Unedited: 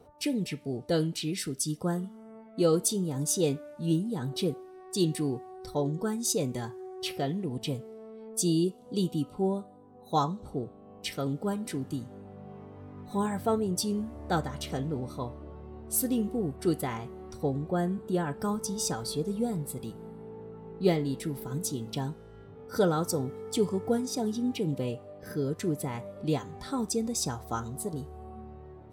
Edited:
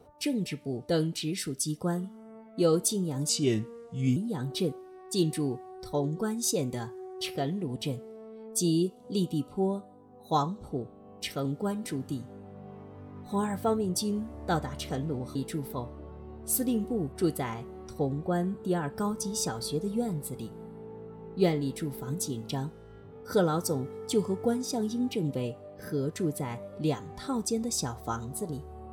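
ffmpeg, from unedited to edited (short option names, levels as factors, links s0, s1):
-filter_complex "[0:a]asplit=5[s0][s1][s2][s3][s4];[s0]atrim=end=3.294[s5];[s1]atrim=start=3.29:end=3.98,asetpts=PTS-STARTPTS,asetrate=34839,aresample=44100[s6];[s2]atrim=start=3.976:end=15.172[s7];[s3]atrim=start=21.068:end=21.452[s8];[s4]atrim=start=15.168[s9];[s5][s6]acrossfade=d=0.004:c1=hsin:c2=hsin[s10];[s10][s7]acrossfade=d=0.004:c1=hsin:c2=hsin[s11];[s11][s8]acrossfade=d=0.004:c1=hsin:c2=hsin[s12];[s12][s9]acrossfade=d=0.004:c1=hsin:c2=hsin"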